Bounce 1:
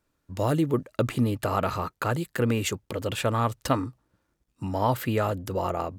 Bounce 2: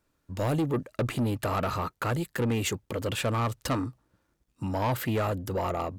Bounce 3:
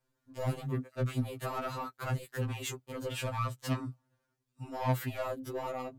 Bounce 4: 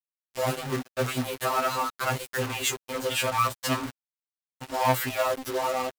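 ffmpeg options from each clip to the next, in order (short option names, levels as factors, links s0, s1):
-af "asoftclip=type=tanh:threshold=0.0708,volume=1.12"
-af "afftfilt=real='re*2.45*eq(mod(b,6),0)':imag='im*2.45*eq(mod(b,6),0)':win_size=2048:overlap=0.75,volume=0.596"
-filter_complex "[0:a]asplit=2[s0][s1];[s1]acrusher=bits=2:mode=log:mix=0:aa=0.000001,volume=0.631[s2];[s0][s2]amix=inputs=2:normalize=0,highpass=f=550:p=1,acrusher=bits=6:mix=0:aa=0.5,volume=2.51"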